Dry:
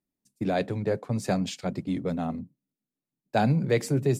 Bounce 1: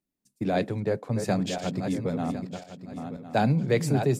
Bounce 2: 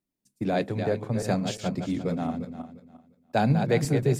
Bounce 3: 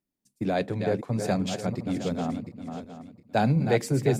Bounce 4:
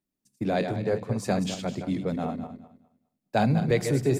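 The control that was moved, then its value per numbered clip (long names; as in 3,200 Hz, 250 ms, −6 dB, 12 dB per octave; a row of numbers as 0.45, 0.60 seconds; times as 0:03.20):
feedback delay that plays each chunk backwards, delay time: 528, 175, 356, 103 milliseconds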